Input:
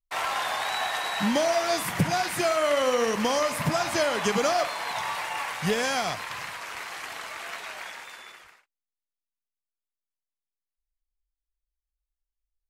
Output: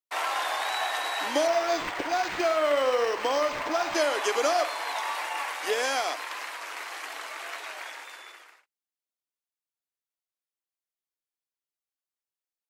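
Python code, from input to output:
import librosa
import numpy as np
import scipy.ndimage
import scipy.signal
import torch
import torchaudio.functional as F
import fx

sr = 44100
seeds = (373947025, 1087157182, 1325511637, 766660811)

y = scipy.signal.sosfilt(scipy.signal.ellip(4, 1.0, 40, 290.0, 'highpass', fs=sr, output='sos'), x)
y = fx.resample_linear(y, sr, factor=4, at=(1.47, 3.95))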